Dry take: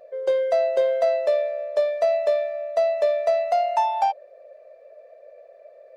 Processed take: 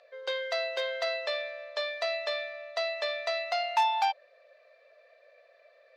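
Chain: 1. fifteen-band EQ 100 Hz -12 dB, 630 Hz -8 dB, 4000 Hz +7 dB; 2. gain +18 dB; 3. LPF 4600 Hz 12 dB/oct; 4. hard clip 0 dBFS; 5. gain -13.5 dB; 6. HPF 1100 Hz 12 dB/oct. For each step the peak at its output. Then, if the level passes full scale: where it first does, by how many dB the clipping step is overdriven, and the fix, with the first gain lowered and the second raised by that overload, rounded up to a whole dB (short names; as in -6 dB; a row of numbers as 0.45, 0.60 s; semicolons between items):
-14.0, +4.0, +3.5, 0.0, -13.5, -15.5 dBFS; step 2, 3.5 dB; step 2 +14 dB, step 5 -9.5 dB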